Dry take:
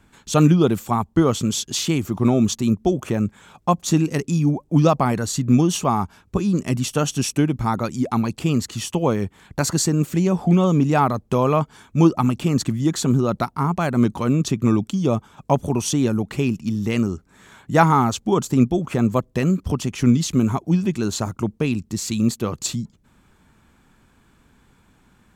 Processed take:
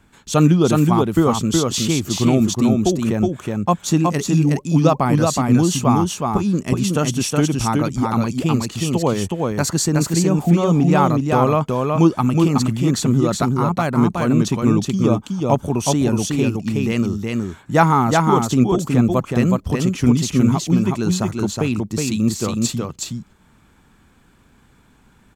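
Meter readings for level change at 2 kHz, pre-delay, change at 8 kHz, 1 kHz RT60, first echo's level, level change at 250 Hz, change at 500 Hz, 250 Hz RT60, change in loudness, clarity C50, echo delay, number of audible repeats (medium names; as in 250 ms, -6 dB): +3.0 dB, no reverb, +2.5 dB, no reverb, -3.0 dB, +2.5 dB, +3.0 dB, no reverb, +2.5 dB, no reverb, 369 ms, 1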